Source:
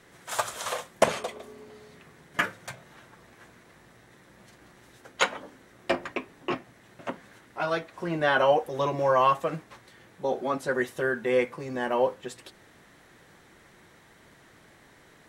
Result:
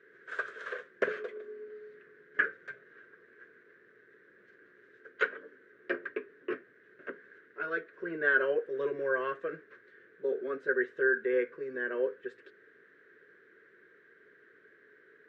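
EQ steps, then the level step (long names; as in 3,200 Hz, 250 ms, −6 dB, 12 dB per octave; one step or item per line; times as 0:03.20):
pair of resonant band-passes 820 Hz, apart 1.9 octaves
high-frequency loss of the air 85 metres
+4.5 dB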